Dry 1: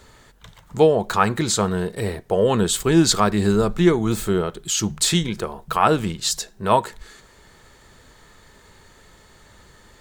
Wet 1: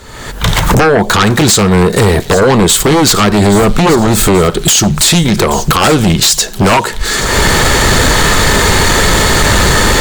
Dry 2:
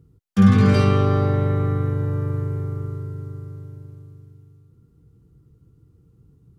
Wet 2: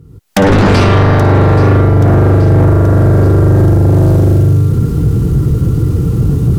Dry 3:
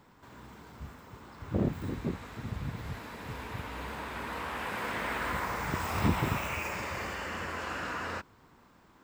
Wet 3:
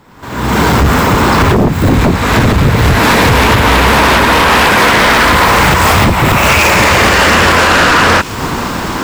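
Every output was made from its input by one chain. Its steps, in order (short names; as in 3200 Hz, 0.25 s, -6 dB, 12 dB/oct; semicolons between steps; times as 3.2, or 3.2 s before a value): recorder AGC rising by 50 dB/s; sine folder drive 18 dB, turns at 4 dBFS; on a send: thin delay 0.828 s, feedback 58%, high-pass 3900 Hz, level -12 dB; on the sum: gain -8 dB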